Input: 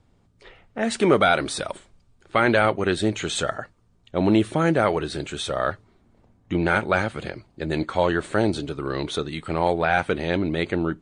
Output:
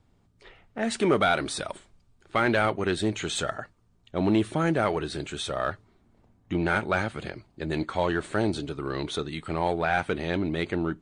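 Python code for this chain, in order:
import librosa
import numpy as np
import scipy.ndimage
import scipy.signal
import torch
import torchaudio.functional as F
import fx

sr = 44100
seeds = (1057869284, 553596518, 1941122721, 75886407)

p1 = fx.peak_eq(x, sr, hz=520.0, db=-3.5, octaves=0.25)
p2 = np.clip(p1, -10.0 ** (-20.5 / 20.0), 10.0 ** (-20.5 / 20.0))
p3 = p1 + (p2 * 10.0 ** (-10.0 / 20.0))
y = p3 * 10.0 ** (-5.5 / 20.0)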